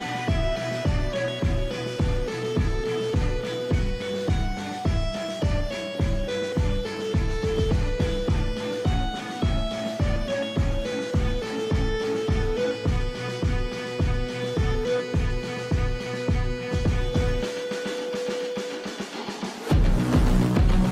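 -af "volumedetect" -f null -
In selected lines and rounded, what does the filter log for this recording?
mean_volume: -24.4 dB
max_volume: -9.3 dB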